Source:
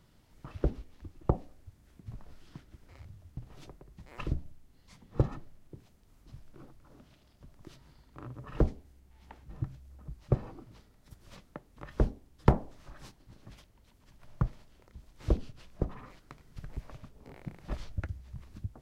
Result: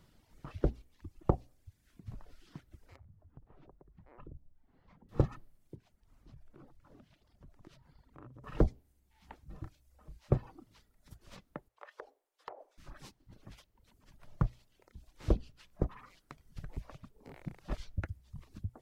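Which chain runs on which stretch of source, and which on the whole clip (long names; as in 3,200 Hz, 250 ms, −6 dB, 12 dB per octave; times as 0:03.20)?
0:02.96–0:05.09: low-pass filter 1,100 Hz + downward compressor 2 to 1, threshold −56 dBFS + one half of a high-frequency compander encoder only
0:05.75–0:08.44: high-shelf EQ 3,300 Hz −7.5 dB + downward compressor 2 to 1, threshold −51 dBFS
0:09.59–0:10.30: parametric band 140 Hz −11 dB 1.8 octaves + mains-hum notches 60/120/180/240/300/360/420/480 Hz + double-tracking delay 34 ms −8 dB
0:11.68–0:12.78: inverse Chebyshev high-pass filter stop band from 230 Hz + high-shelf EQ 2,700 Hz −9 dB + downward compressor 20 to 1, threshold −40 dBFS
whole clip: mains-hum notches 60/120 Hz; reverb reduction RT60 0.96 s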